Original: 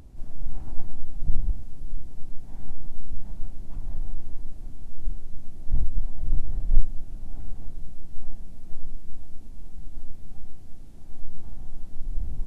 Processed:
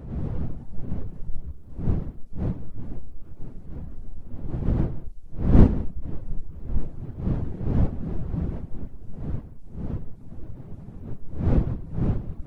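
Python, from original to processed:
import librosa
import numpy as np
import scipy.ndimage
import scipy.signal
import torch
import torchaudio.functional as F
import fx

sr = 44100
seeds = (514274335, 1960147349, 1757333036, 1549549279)

p1 = fx.pitch_trill(x, sr, semitones=8.5, every_ms=282)
p2 = fx.dmg_wind(p1, sr, seeds[0], corner_hz=150.0, level_db=-17.0)
p3 = fx.dereverb_blind(p2, sr, rt60_s=0.58)
p4 = p3 + fx.echo_multitap(p3, sr, ms=(106, 178), db=(-16.0, -17.0), dry=0)
y = p4 * 10.0 ** (-8.5 / 20.0)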